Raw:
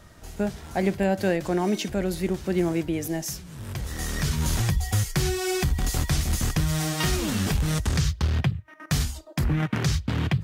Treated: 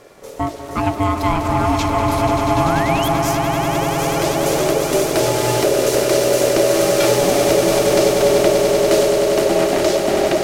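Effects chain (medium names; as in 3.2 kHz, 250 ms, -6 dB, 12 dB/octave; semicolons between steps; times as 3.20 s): ring modulator 490 Hz; painted sound rise, 2.57–3.09 s, 980–3500 Hz -36 dBFS; echo with a slow build-up 97 ms, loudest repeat 8, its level -9 dB; trim +7.5 dB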